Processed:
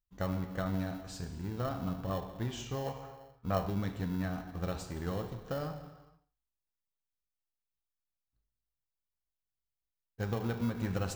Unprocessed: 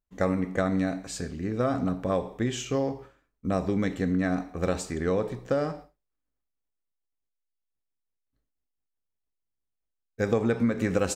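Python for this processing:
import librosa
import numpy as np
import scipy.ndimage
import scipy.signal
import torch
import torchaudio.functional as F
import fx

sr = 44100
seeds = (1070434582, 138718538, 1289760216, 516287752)

p1 = fx.rev_gated(x, sr, seeds[0], gate_ms=500, shape='falling', drr_db=7.5)
p2 = fx.spec_box(p1, sr, start_s=2.86, length_s=0.82, low_hz=420.0, high_hz=2500.0, gain_db=7)
p3 = fx.sample_hold(p2, sr, seeds[1], rate_hz=1200.0, jitter_pct=0)
p4 = p2 + (p3 * librosa.db_to_amplitude(-12.0))
p5 = fx.graphic_eq_10(p4, sr, hz=(250, 500, 2000, 8000), db=(-9, -9, -9, -10))
y = p5 * librosa.db_to_amplitude(-3.5)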